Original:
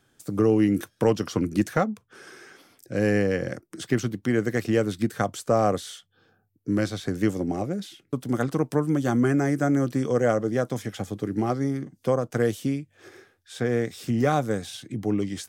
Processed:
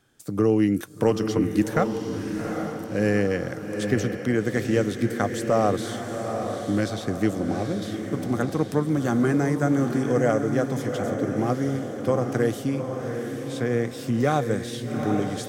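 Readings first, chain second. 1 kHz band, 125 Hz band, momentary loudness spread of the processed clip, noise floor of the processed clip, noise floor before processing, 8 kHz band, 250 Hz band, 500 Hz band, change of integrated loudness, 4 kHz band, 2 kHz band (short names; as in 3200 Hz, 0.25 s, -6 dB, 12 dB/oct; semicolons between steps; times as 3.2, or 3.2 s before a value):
+1.0 dB, +1.0 dB, 8 LU, -35 dBFS, -69 dBFS, +1.0 dB, +1.0 dB, +1.0 dB, +0.5 dB, +1.0 dB, +1.5 dB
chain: diffused feedback echo 0.8 s, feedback 50%, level -6 dB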